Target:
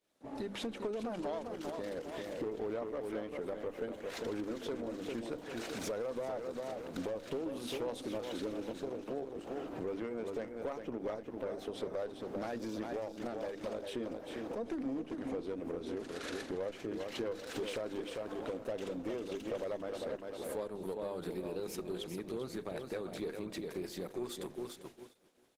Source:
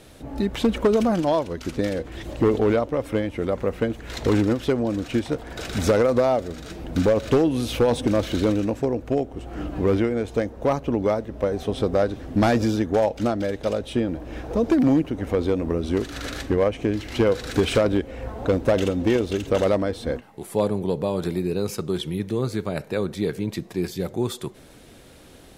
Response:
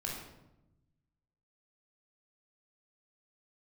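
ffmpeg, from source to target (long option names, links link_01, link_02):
-af "bandreject=frequency=50:width_type=h:width=6,bandreject=frequency=100:width_type=h:width=6,bandreject=frequency=150:width_type=h:width=6,bandreject=frequency=200:width_type=h:width=6,bandreject=frequency=250:width_type=h:width=6,bandreject=frequency=300:width_type=h:width=6,bandreject=frequency=350:width_type=h:width=6,aecho=1:1:398|796|1194|1592:0.398|0.135|0.046|0.0156,agate=range=-33dB:threshold=-33dB:ratio=3:detection=peak,highpass=250,acompressor=threshold=-33dB:ratio=3,aeval=exprs='(tanh(20*val(0)+0.3)-tanh(0.3))/20':channel_layout=same,volume=-3dB" -ar 48000 -c:a libopus -b:a 16k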